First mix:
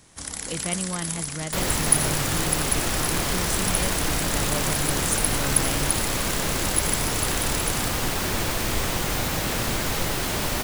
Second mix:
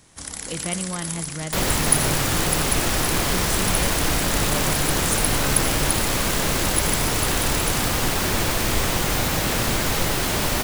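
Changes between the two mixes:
speech: send on; second sound +3.5 dB

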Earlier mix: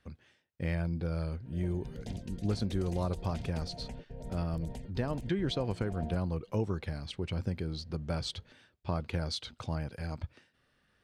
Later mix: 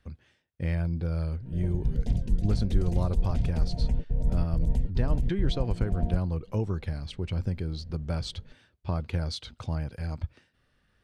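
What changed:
background: add low shelf 340 Hz +11 dB; master: add low shelf 88 Hz +12 dB

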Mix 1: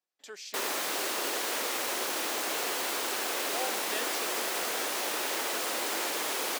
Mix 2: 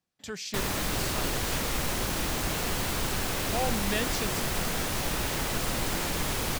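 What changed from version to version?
speech +6.0 dB; master: remove HPF 340 Hz 24 dB/oct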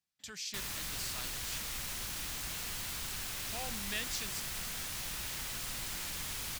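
speech +4.0 dB; master: add passive tone stack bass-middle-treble 5-5-5

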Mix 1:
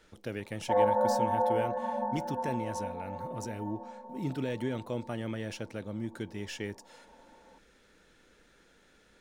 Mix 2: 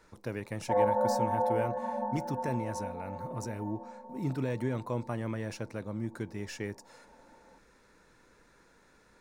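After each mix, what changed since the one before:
speech: add thirty-one-band EQ 125 Hz +5 dB, 1000 Hz +10 dB, 3150 Hz -11 dB; background: add air absorption 360 m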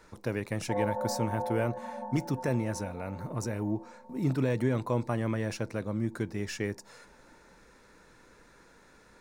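speech +4.5 dB; background -5.5 dB

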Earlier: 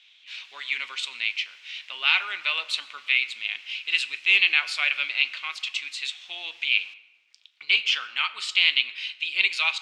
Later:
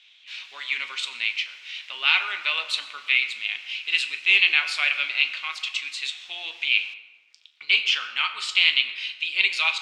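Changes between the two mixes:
speech: send +7.0 dB; background +3.5 dB

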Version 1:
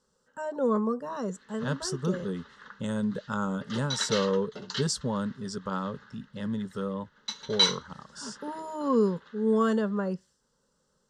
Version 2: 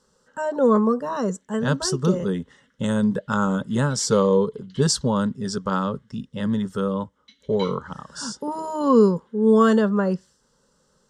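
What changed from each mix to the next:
speech +8.5 dB; background: add vowel filter i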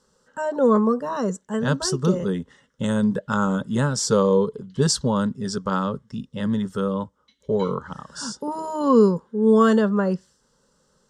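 background -8.0 dB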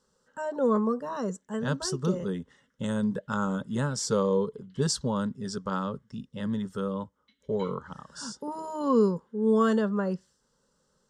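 speech -7.0 dB; background: add air absorption 250 m

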